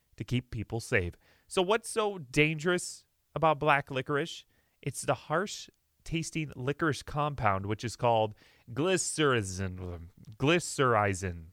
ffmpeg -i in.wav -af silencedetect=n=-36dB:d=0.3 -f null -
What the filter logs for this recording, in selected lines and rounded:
silence_start: 1.10
silence_end: 1.52 | silence_duration: 0.43
silence_start: 2.94
silence_end: 3.36 | silence_duration: 0.42
silence_start: 4.38
silence_end: 4.83 | silence_duration: 0.45
silence_start: 5.64
silence_end: 6.06 | silence_duration: 0.42
silence_start: 8.29
silence_end: 8.71 | silence_duration: 0.42
silence_start: 9.97
silence_end: 10.40 | silence_duration: 0.44